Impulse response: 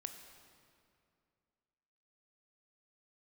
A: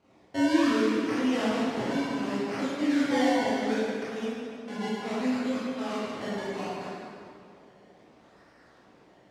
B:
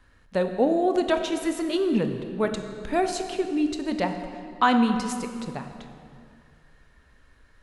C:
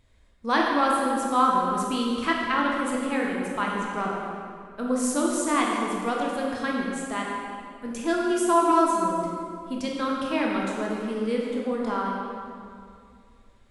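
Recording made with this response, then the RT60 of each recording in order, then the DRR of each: B; 2.4, 2.4, 2.4 seconds; −10.0, 6.0, −2.5 decibels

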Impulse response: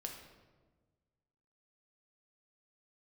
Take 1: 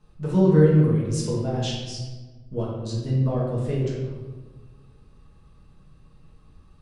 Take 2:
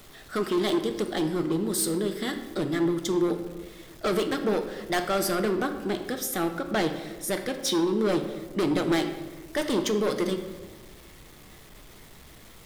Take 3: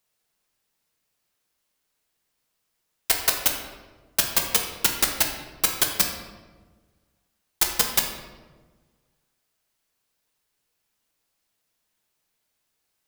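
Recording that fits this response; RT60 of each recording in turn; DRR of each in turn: 3; 1.4, 1.4, 1.4 seconds; −6.5, 6.0, 1.5 decibels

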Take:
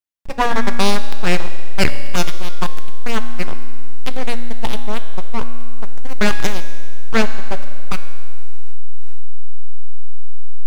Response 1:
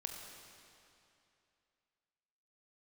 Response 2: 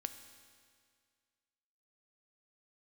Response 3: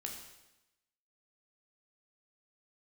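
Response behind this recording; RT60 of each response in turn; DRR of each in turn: 2; 2.7, 2.0, 0.95 seconds; 2.0, 8.5, 0.5 decibels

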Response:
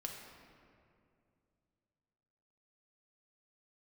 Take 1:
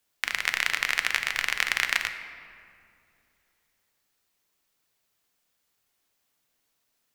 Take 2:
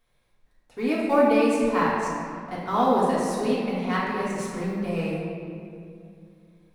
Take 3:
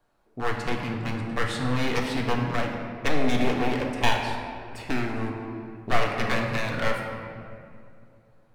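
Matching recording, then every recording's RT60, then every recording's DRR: 3; 2.5, 2.4, 2.4 seconds; 7.0, −7.5, 0.0 decibels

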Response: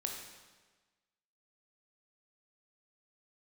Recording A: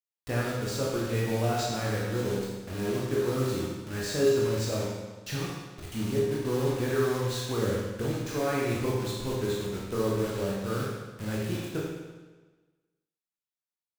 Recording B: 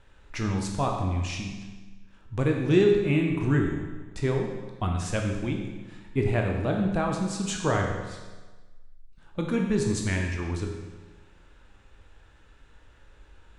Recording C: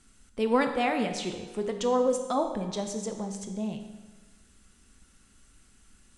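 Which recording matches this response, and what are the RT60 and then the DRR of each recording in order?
B; 1.3, 1.3, 1.3 seconds; −5.0, 1.0, 5.5 decibels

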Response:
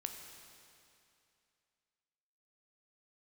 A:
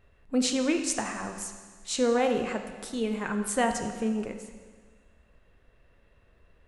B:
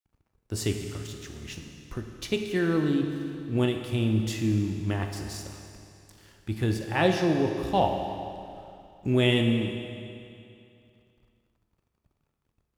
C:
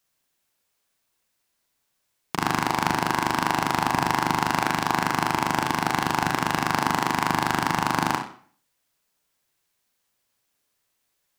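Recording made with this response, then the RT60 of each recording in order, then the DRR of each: B; 1.6, 2.6, 0.50 seconds; 5.0, 4.0, 3.0 decibels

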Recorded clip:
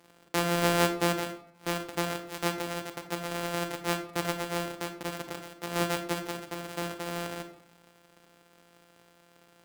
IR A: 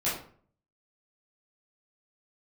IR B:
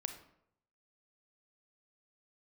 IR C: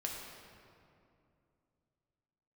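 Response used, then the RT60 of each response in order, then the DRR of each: B; 0.50, 0.75, 2.6 seconds; −10.5, 7.0, −1.5 decibels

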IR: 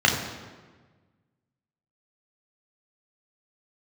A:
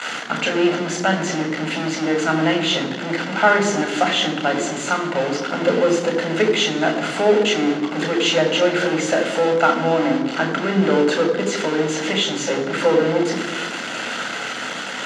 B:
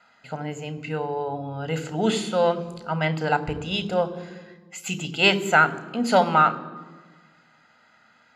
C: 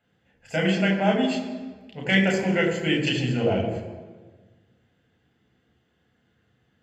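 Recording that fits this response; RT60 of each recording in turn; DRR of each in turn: C; 1.4, 1.4, 1.4 seconds; 3.5, 12.5, −1.0 decibels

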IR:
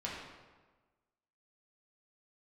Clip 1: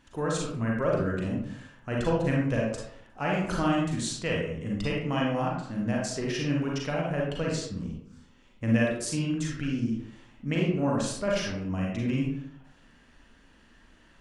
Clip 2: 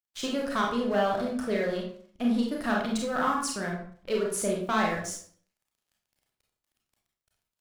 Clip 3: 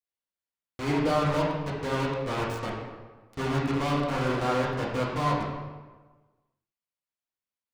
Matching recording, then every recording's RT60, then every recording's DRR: 3; 0.65, 0.50, 1.3 seconds; −3.0, −1.5, −5.5 decibels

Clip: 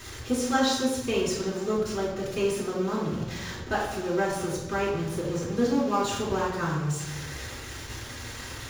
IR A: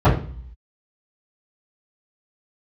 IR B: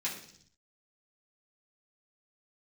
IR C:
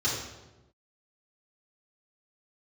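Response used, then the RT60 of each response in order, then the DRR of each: C; 0.45, 0.60, 1.1 seconds; −17.0, −7.5, −10.0 decibels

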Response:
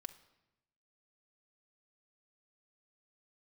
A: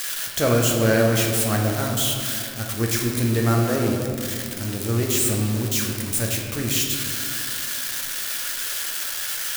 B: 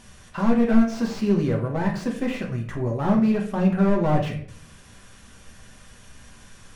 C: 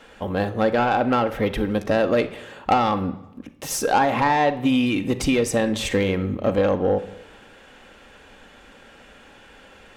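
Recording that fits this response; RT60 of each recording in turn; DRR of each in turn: C; 2.4, 0.55, 0.95 seconds; −0.5, −1.0, 6.5 decibels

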